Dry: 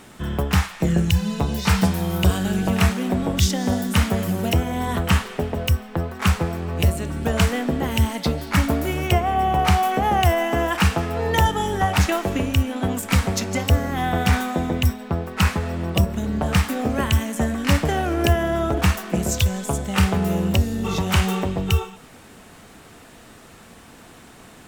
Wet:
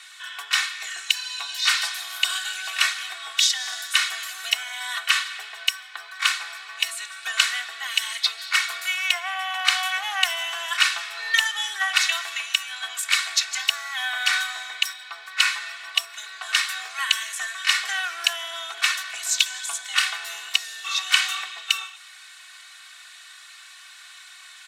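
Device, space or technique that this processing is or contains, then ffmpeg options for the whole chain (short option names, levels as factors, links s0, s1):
headphones lying on a table: -af "highpass=f=1400:w=0.5412,highpass=f=1400:w=1.3066,lowpass=9500,equalizer=f=3900:t=o:w=0.32:g=7,aecho=1:1:2.7:0.99,volume=1.26"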